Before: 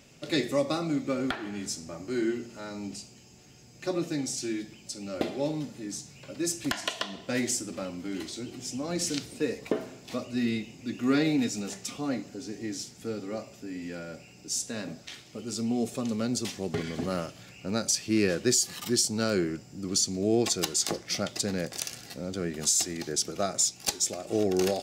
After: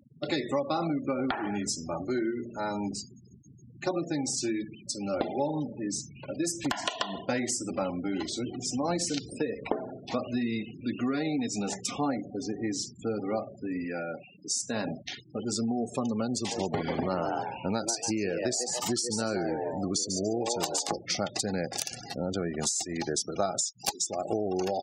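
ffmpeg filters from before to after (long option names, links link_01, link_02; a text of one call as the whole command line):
ffmpeg -i in.wav -filter_complex "[0:a]asplit=3[link_01][link_02][link_03];[link_01]afade=type=out:start_time=5.18:duration=0.02[link_04];[link_02]asplit=2[link_05][link_06];[link_06]adelay=146,lowpass=frequency=2000:poles=1,volume=-24dB,asplit=2[link_07][link_08];[link_08]adelay=146,lowpass=frequency=2000:poles=1,volume=0.48,asplit=2[link_09][link_10];[link_10]adelay=146,lowpass=frequency=2000:poles=1,volume=0.48[link_11];[link_05][link_07][link_09][link_11]amix=inputs=4:normalize=0,afade=type=in:start_time=5.18:duration=0.02,afade=type=out:start_time=7.32:duration=0.02[link_12];[link_03]afade=type=in:start_time=7.32:duration=0.02[link_13];[link_04][link_12][link_13]amix=inputs=3:normalize=0,asettb=1/sr,asplit=3[link_14][link_15][link_16];[link_14]atrim=end=13.844[link_17];[link_15]atrim=start=13.84:end=14.61,asetpts=PTS-STARTPTS,afade=type=in:duration=0.004:curve=qsin,afade=type=out:start_time=0.766:duration=0.004:curve=qsin,equalizer=frequency=85:width=0.5:gain=-8[link_18];[link_16]atrim=start=14.606[link_19];[link_17][link_18]acrossfade=duration=0.004:curve1=hsin:curve2=qsin[link_20];[link_20][link_19]acrossfade=duration=0.004:curve1=qsin:curve2=hsin,asplit=3[link_21][link_22][link_23];[link_21]afade=type=out:start_time=16.5:duration=0.02[link_24];[link_22]asplit=5[link_25][link_26][link_27][link_28][link_29];[link_26]adelay=143,afreqshift=120,volume=-7dB[link_30];[link_27]adelay=286,afreqshift=240,volume=-16.1dB[link_31];[link_28]adelay=429,afreqshift=360,volume=-25.2dB[link_32];[link_29]adelay=572,afreqshift=480,volume=-34.4dB[link_33];[link_25][link_30][link_31][link_32][link_33]amix=inputs=5:normalize=0,afade=type=in:start_time=16.5:duration=0.02,afade=type=out:start_time=20.89:duration=0.02[link_34];[link_23]afade=type=in:start_time=20.89:duration=0.02[link_35];[link_24][link_34][link_35]amix=inputs=3:normalize=0,acompressor=threshold=-31dB:ratio=16,afftfilt=real='re*gte(hypot(re,im),0.00708)':imag='im*gte(hypot(re,im),0.00708)':win_size=1024:overlap=0.75,equalizer=frequency=860:width_type=o:width=0.63:gain=10.5,volume=4.5dB" out.wav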